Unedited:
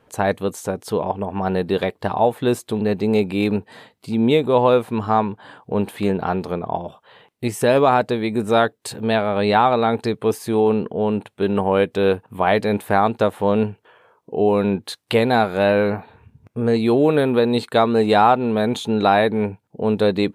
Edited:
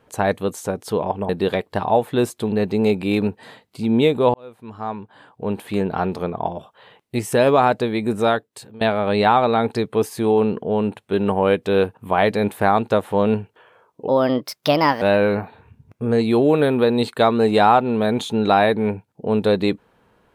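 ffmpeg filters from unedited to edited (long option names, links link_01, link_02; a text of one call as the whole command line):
ffmpeg -i in.wav -filter_complex "[0:a]asplit=6[link_01][link_02][link_03][link_04][link_05][link_06];[link_01]atrim=end=1.292[link_07];[link_02]atrim=start=1.578:end=4.63,asetpts=PTS-STARTPTS,afade=type=out:start_time=3.048:duration=0.004:curve=hsin[link_08];[link_03]atrim=start=4.63:end=9.1,asetpts=PTS-STARTPTS,afade=type=in:duration=1.7,afade=type=out:start_time=3.8:duration=0.67:silence=0.0944061[link_09];[link_04]atrim=start=9.1:end=14.374,asetpts=PTS-STARTPTS,afade=type=in:duration=0.004:curve=hsin:silence=0.0944061[link_10];[link_05]atrim=start=14.37:end=15.57,asetpts=PTS-STARTPTS,asetrate=56448,aresample=44100[link_11];[link_06]atrim=start=15.566[link_12];[link_08][link_09][link_10]concat=n=3:v=0:a=1[link_13];[link_07][link_13]acrossfade=duration=0.004:curve1=hsin:curve2=hsin[link_14];[link_14][link_11]acrossfade=duration=0.004:curve1=hsin:curve2=hsin[link_15];[link_15][link_12]acrossfade=duration=0.004:curve1=hsin:curve2=hsin" out.wav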